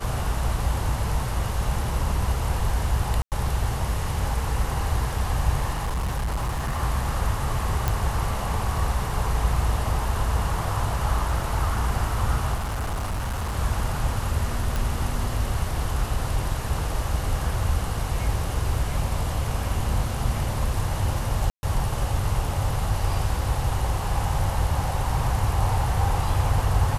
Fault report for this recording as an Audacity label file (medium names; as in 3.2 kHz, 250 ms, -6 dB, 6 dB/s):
3.220000	3.320000	dropout 98 ms
5.720000	6.810000	clipped -22.5 dBFS
7.880000	7.880000	pop
12.540000	13.570000	clipped -24 dBFS
14.760000	14.760000	pop
21.500000	21.630000	dropout 130 ms